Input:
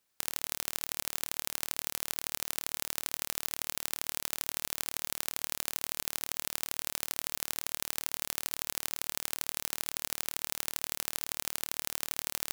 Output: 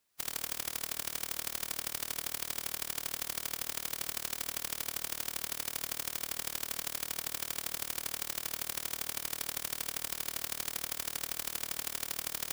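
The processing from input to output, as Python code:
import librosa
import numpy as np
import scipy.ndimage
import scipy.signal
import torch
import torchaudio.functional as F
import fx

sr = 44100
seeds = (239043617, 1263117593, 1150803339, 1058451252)

y = fx.rev_spring(x, sr, rt60_s=1.1, pass_ms=(44,), chirp_ms=50, drr_db=19.5)
y = fx.pitch_keep_formants(y, sr, semitones=1.5)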